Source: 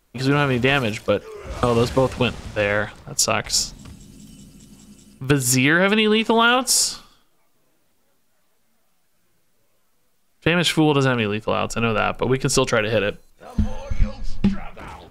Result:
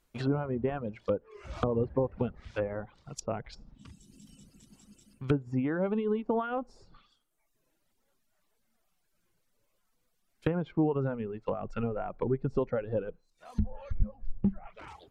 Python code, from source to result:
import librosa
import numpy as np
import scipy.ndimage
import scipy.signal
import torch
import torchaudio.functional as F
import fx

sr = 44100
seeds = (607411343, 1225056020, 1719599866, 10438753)

y = fx.env_lowpass_down(x, sr, base_hz=710.0, full_db=-17.5)
y = fx.dereverb_blind(y, sr, rt60_s=1.1)
y = F.gain(torch.from_numpy(y), -8.5).numpy()